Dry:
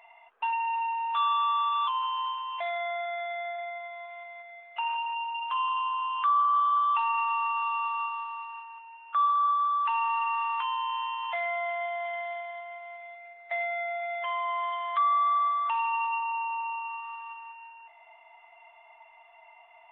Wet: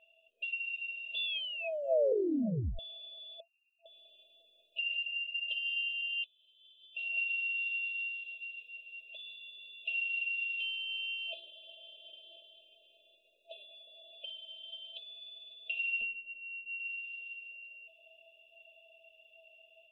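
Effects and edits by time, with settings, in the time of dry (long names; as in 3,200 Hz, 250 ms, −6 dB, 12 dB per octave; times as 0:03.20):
0:01.25: tape stop 1.54 s
0:03.40–0:03.86: linear-phase brick-wall band-pass 1,400–2,800 Hz
0:05.48–0:07.18: compressor whose output falls as the input rises −29 dBFS, ratio −0.5
0:07.90–0:08.55: delay throw 330 ms, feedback 80%, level −8.5 dB
0:10.28–0:10.77: notch filter 640 Hz, Q 6.3
0:16.01–0:16.80: linear-prediction vocoder at 8 kHz pitch kept
whole clip: brick-wall band-stop 670–2,500 Hz; low-shelf EQ 500 Hz −8 dB; automatic gain control gain up to 6 dB; level −2.5 dB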